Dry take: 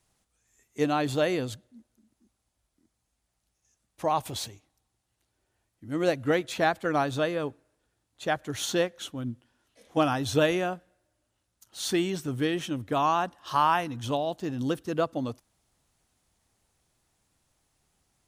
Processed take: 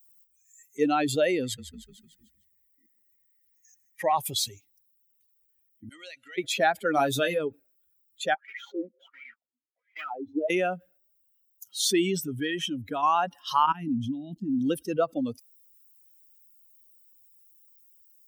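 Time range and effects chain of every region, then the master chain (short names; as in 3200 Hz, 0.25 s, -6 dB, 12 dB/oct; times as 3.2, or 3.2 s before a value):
1.43–4.15 bell 1900 Hz +13.5 dB 0.46 oct + frequency-shifting echo 0.151 s, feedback 55%, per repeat -33 Hz, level -10.5 dB
5.89–6.38 compressor 10:1, threshold -28 dBFS + band-pass 7600 Hz, Q 0.5 + high shelf 7800 Hz -12 dB
6.94–7.39 high shelf 9000 Hz +11 dB + doubler 22 ms -6 dB
8.34–10.5 block floating point 3-bit + dynamic EQ 1200 Hz, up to -5 dB, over -37 dBFS, Q 1.1 + wah 1.4 Hz 260–2200 Hz, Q 5.6
12.18–13.03 dynamic EQ 1600 Hz, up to +6 dB, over -50 dBFS, Q 4.2 + compressor 1.5:1, threshold -37 dBFS
13.66–14.59 level quantiser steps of 22 dB + resonant low shelf 360 Hz +10 dB, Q 3
whole clip: per-bin expansion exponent 2; HPF 260 Hz 12 dB/oct; fast leveller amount 50%; gain +3.5 dB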